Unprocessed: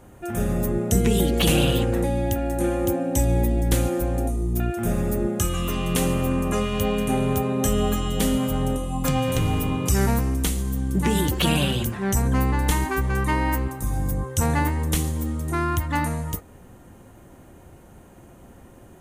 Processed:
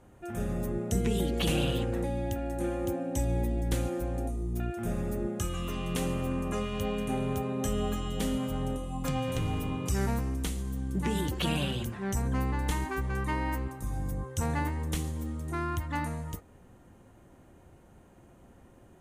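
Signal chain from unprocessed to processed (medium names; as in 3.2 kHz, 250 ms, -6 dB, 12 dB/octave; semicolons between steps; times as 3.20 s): treble shelf 11 kHz -10 dB; trim -8.5 dB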